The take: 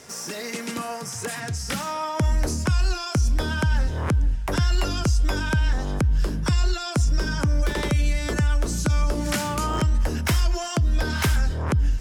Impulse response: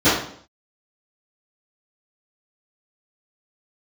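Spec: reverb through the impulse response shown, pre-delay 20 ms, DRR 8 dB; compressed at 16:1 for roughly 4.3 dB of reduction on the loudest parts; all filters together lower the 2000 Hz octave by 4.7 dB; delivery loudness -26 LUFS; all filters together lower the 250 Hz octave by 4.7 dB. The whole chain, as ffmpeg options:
-filter_complex "[0:a]equalizer=f=250:t=o:g=-7,equalizer=f=2k:t=o:g=-6.5,acompressor=threshold=-21dB:ratio=16,asplit=2[a][b];[1:a]atrim=start_sample=2205,adelay=20[c];[b][c]afir=irnorm=-1:irlink=0,volume=-31.5dB[d];[a][d]amix=inputs=2:normalize=0,volume=1dB"

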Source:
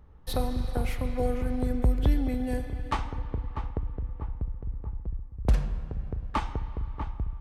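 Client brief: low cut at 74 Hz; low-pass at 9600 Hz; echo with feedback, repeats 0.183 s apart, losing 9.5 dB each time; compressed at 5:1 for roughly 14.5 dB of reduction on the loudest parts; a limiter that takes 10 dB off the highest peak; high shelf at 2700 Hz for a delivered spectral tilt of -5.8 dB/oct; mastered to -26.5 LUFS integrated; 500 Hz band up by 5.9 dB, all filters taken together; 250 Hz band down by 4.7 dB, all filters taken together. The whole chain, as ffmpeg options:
-af "highpass=74,lowpass=9.6k,equalizer=f=250:t=o:g=-7,equalizer=f=500:t=o:g=7.5,highshelf=f=2.7k:g=3.5,acompressor=threshold=-38dB:ratio=5,alimiter=level_in=9dB:limit=-24dB:level=0:latency=1,volume=-9dB,aecho=1:1:183|366|549|732:0.335|0.111|0.0365|0.012,volume=17.5dB"

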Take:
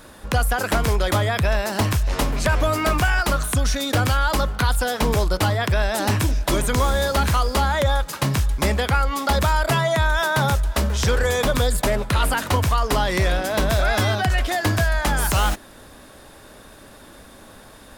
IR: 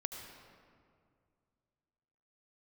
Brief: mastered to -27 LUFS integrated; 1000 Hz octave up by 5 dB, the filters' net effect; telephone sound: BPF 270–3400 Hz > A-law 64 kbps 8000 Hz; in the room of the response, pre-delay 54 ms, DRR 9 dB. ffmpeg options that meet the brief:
-filter_complex "[0:a]equalizer=f=1k:t=o:g=6.5,asplit=2[a][b];[1:a]atrim=start_sample=2205,adelay=54[c];[b][c]afir=irnorm=-1:irlink=0,volume=-8.5dB[d];[a][d]amix=inputs=2:normalize=0,highpass=270,lowpass=3.4k,volume=-6.5dB" -ar 8000 -c:a pcm_alaw

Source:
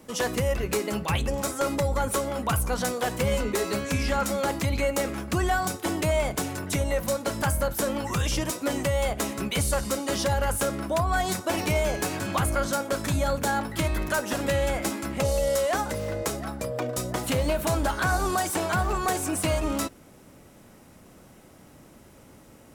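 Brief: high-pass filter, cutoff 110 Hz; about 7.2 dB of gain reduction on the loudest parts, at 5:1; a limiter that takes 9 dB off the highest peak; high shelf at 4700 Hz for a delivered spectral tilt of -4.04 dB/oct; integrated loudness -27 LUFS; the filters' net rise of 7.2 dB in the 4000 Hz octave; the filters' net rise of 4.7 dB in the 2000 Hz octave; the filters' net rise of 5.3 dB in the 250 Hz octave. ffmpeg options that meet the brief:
-af "highpass=110,equalizer=f=250:t=o:g=7,equalizer=f=2k:t=o:g=4,equalizer=f=4k:t=o:g=5.5,highshelf=f=4.7k:g=5,acompressor=threshold=-27dB:ratio=5,volume=5.5dB,alimiter=limit=-18dB:level=0:latency=1"

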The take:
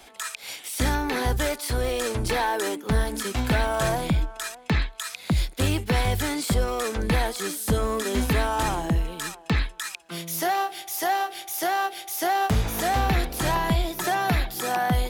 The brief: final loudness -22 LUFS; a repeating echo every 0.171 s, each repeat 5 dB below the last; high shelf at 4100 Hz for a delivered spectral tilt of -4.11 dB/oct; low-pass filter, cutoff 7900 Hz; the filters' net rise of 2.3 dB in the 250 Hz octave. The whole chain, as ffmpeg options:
-af "lowpass=7.9k,equalizer=f=250:t=o:g=3,highshelf=f=4.1k:g=7.5,aecho=1:1:171|342|513|684|855|1026|1197:0.562|0.315|0.176|0.0988|0.0553|0.031|0.0173,volume=1dB"

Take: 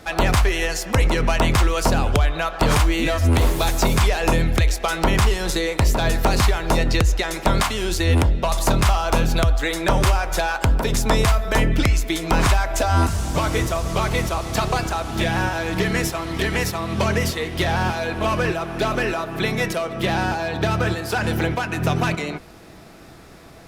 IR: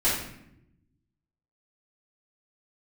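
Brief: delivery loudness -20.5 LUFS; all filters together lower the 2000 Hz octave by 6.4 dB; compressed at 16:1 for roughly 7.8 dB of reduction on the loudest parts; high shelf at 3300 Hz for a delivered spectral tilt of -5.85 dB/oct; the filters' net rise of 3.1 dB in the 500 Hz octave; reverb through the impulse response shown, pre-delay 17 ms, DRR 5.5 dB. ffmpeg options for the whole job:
-filter_complex "[0:a]equalizer=f=500:t=o:g=4.5,equalizer=f=2k:t=o:g=-6.5,highshelf=f=3.3k:g=-7,acompressor=threshold=-20dB:ratio=16,asplit=2[a][b];[1:a]atrim=start_sample=2205,adelay=17[c];[b][c]afir=irnorm=-1:irlink=0,volume=-18.5dB[d];[a][d]amix=inputs=2:normalize=0,volume=4dB"

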